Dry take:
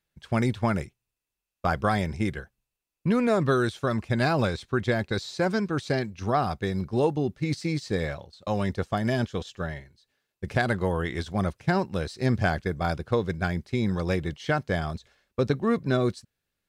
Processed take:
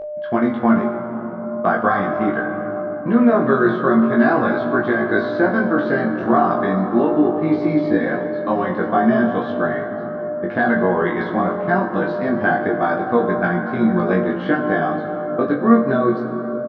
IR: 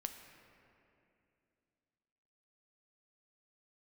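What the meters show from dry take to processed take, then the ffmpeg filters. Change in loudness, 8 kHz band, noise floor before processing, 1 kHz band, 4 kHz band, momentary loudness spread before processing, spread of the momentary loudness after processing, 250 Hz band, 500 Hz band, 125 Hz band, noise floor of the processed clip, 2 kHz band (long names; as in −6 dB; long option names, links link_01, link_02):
+9.0 dB, below −20 dB, below −85 dBFS, +10.5 dB, can't be measured, 7 LU, 8 LU, +11.0 dB, +9.5 dB, 0.0 dB, −27 dBFS, +9.5 dB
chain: -filter_complex "[0:a]acompressor=threshold=-24dB:ratio=6,highpass=210,equalizer=frequency=220:width_type=q:width=4:gain=9,equalizer=frequency=320:width_type=q:width=4:gain=9,equalizer=frequency=710:width_type=q:width=4:gain=6,equalizer=frequency=1100:width_type=q:width=4:gain=7,equalizer=frequency=1600:width_type=q:width=4:gain=7,equalizer=frequency=2500:width_type=q:width=4:gain=-10,lowpass=frequency=3000:width=0.5412,lowpass=frequency=3000:width=1.3066,aeval=exprs='val(0)+0.0282*sin(2*PI*600*n/s)':channel_layout=same,asplit=2[link_01][link_02];[link_02]adelay=17,volume=-4dB[link_03];[link_01][link_03]amix=inputs=2:normalize=0[link_04];[1:a]atrim=start_sample=2205,asetrate=24255,aresample=44100[link_05];[link_04][link_05]afir=irnorm=-1:irlink=0,flanger=delay=19.5:depth=2.9:speed=0.4,volume=8.5dB"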